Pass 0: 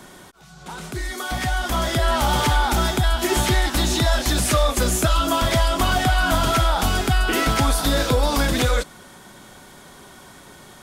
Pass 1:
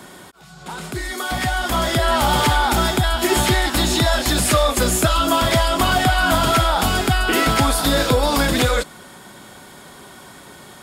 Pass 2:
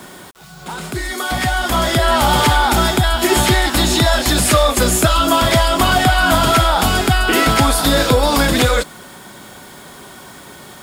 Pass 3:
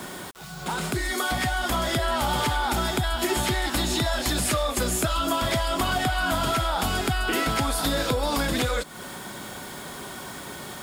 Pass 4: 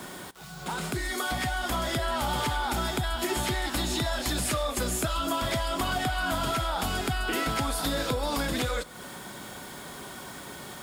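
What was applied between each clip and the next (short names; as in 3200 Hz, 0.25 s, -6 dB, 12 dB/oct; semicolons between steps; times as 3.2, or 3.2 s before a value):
HPF 78 Hz 6 dB/oct; notch 6000 Hz, Q 10; gain +3.5 dB
requantised 8-bit, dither none; gain +3.5 dB
compressor 4:1, threshold -24 dBFS, peak gain reduction 13 dB
reverb, pre-delay 3 ms, DRR 20 dB; gain -4 dB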